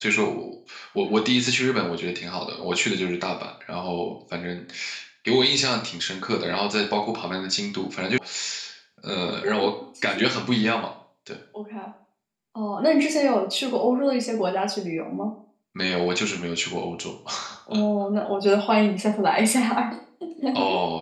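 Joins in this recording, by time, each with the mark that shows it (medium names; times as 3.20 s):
8.18 s: sound stops dead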